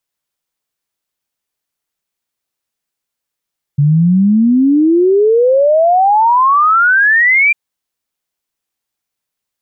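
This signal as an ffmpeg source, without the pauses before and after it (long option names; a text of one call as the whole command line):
ffmpeg -f lavfi -i "aevalsrc='0.473*clip(min(t,3.75-t)/0.01,0,1)*sin(2*PI*140*3.75/log(2400/140)*(exp(log(2400/140)*t/3.75)-1))':duration=3.75:sample_rate=44100" out.wav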